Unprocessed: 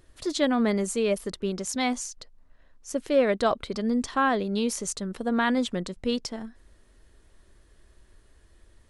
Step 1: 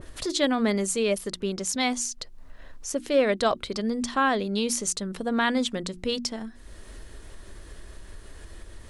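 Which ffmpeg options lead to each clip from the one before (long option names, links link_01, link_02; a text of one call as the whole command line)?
ffmpeg -i in.wav -af "bandreject=frequency=60:width_type=h:width=6,bandreject=frequency=120:width_type=h:width=6,bandreject=frequency=180:width_type=h:width=6,bandreject=frequency=240:width_type=h:width=6,bandreject=frequency=300:width_type=h:width=6,bandreject=frequency=360:width_type=h:width=6,acompressor=mode=upward:threshold=-28dB:ratio=2.5,adynamicequalizer=threshold=0.01:dfrequency=2100:dqfactor=0.7:tfrequency=2100:tqfactor=0.7:attack=5:release=100:ratio=0.375:range=2.5:mode=boostabove:tftype=highshelf" out.wav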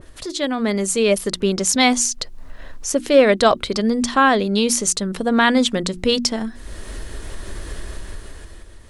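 ffmpeg -i in.wav -af "dynaudnorm=framelen=160:gausssize=11:maxgain=13.5dB" out.wav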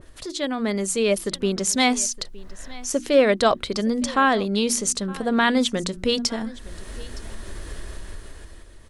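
ffmpeg -i in.wav -af "aecho=1:1:915:0.0891,volume=-4dB" out.wav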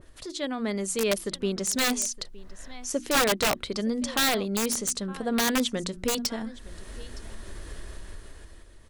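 ffmpeg -i in.wav -af "aeval=exprs='(mod(3.76*val(0)+1,2)-1)/3.76':channel_layout=same,volume=-5dB" out.wav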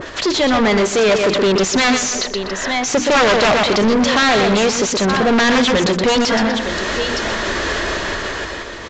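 ffmpeg -i in.wav -filter_complex "[0:a]asplit=2[link_01][link_02];[link_02]adelay=123,lowpass=frequency=3400:poles=1,volume=-9.5dB,asplit=2[link_03][link_04];[link_04]adelay=123,lowpass=frequency=3400:poles=1,volume=0.28,asplit=2[link_05][link_06];[link_06]adelay=123,lowpass=frequency=3400:poles=1,volume=0.28[link_07];[link_01][link_03][link_05][link_07]amix=inputs=4:normalize=0,asplit=2[link_08][link_09];[link_09]highpass=frequency=720:poles=1,volume=33dB,asoftclip=type=tanh:threshold=-14dB[link_10];[link_08][link_10]amix=inputs=2:normalize=0,lowpass=frequency=2900:poles=1,volume=-6dB,aresample=16000,aresample=44100,volume=7dB" out.wav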